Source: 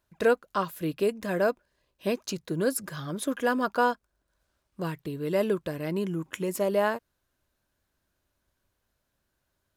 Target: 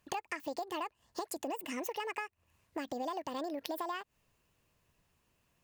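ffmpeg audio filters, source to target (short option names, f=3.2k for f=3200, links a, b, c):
-af "acompressor=threshold=-38dB:ratio=12,asetrate=76440,aresample=44100,volume=3dB"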